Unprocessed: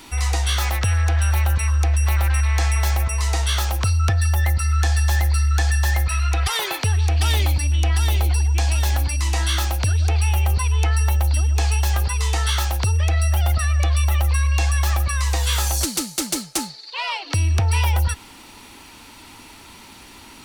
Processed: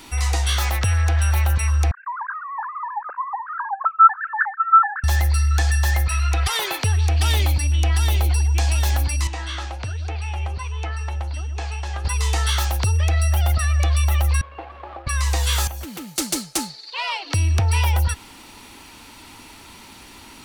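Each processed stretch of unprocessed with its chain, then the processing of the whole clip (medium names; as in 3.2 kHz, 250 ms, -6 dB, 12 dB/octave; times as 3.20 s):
1.91–5.04 s: formants replaced by sine waves + Chebyshev low-pass 1.6 kHz, order 6
9.27–12.05 s: low-pass 8.4 kHz 24 dB/octave + tone controls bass -4 dB, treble -8 dB + flange 1.3 Hz, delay 4.9 ms, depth 8 ms, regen +78%
14.41–15.07 s: median filter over 25 samples + high-pass 320 Hz + distance through air 390 m
15.67–16.16 s: high-pass 45 Hz + high-order bell 6.6 kHz -12 dB + compression 3:1, threshold -31 dBFS
whole clip: none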